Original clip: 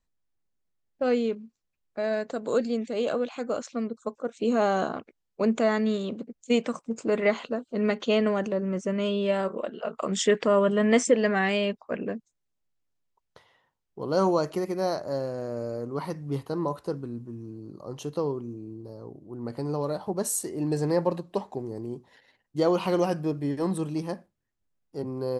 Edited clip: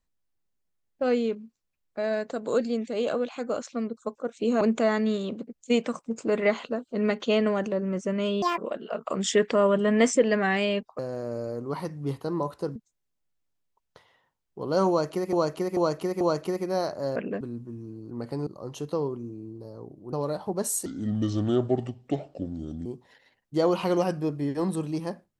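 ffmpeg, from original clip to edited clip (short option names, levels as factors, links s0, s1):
-filter_complex "[0:a]asplit=16[s0][s1][s2][s3][s4][s5][s6][s7][s8][s9][s10][s11][s12][s13][s14][s15];[s0]atrim=end=4.612[s16];[s1]atrim=start=5.408:end=9.224[s17];[s2]atrim=start=9.22:end=9.5,asetpts=PTS-STARTPTS,asetrate=78498,aresample=44100,atrim=end_sample=6937,asetpts=PTS-STARTPTS[s18];[s3]atrim=start=9.496:end=11.912[s19];[s4]atrim=start=15.238:end=17.012[s20];[s5]atrim=start=12.158:end=14.732[s21];[s6]atrim=start=14.288:end=14.732[s22];[s7]atrim=start=14.288:end=14.732[s23];[s8]atrim=start=14.288:end=15.242[s24];[s9]atrim=start=11.908:end=12.162[s25];[s10]atrim=start=17.008:end=17.712[s26];[s11]atrim=start=19.368:end=19.732[s27];[s12]atrim=start=17.708:end=19.372[s28];[s13]atrim=start=19.728:end=20.464[s29];[s14]atrim=start=20.46:end=21.88,asetpts=PTS-STARTPTS,asetrate=31311,aresample=44100[s30];[s15]atrim=start=21.876[s31];[s16][s17]acrossfade=d=0.004:c1=hsin:c2=hsin[s32];[s32][s18]acrossfade=d=0.004:c1=hsin:c2=hsin[s33];[s33][s19]acrossfade=d=0.004:c1=hsin:c2=hsin[s34];[s34][s20]acrossfade=d=0.004:c1=hsin:c2=hsin[s35];[s35][s21]acrossfade=d=0.004:c1=hsin:c2=hsin[s36];[s36][s22]acrossfade=d=0.004:c1=hsin:c2=hsin[s37];[s37][s23]acrossfade=d=0.004:c1=hsin:c2=hsin[s38];[s38][s24]acrossfade=d=0.004:c1=hsin:c2=hsin[s39];[s39][s25]acrossfade=d=0.004:c1=hsin:c2=hsin[s40];[s40][s26]acrossfade=d=0.004:c1=hsin:c2=hsin[s41];[s41][s27]acrossfade=d=0.004:c1=hsin:c2=hsin[s42];[s42][s28]acrossfade=d=0.004:c1=hsin:c2=hsin[s43];[s43][s29]acrossfade=d=0.004:c1=hsin:c2=hsin[s44];[s44][s30]acrossfade=d=0.004:c1=hsin:c2=hsin[s45];[s45][s31]acrossfade=d=0.004:c1=hsin:c2=hsin"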